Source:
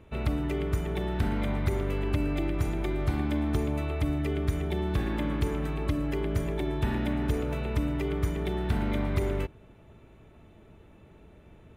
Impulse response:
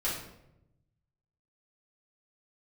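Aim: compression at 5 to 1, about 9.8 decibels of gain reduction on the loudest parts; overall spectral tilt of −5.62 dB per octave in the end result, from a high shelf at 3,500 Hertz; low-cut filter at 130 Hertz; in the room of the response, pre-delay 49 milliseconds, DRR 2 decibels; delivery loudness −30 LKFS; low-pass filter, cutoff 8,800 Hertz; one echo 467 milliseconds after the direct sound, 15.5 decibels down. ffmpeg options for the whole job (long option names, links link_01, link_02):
-filter_complex "[0:a]highpass=130,lowpass=8800,highshelf=frequency=3500:gain=6,acompressor=threshold=-38dB:ratio=5,aecho=1:1:467:0.168,asplit=2[link_01][link_02];[1:a]atrim=start_sample=2205,adelay=49[link_03];[link_02][link_03]afir=irnorm=-1:irlink=0,volume=-8.5dB[link_04];[link_01][link_04]amix=inputs=2:normalize=0,volume=9.5dB"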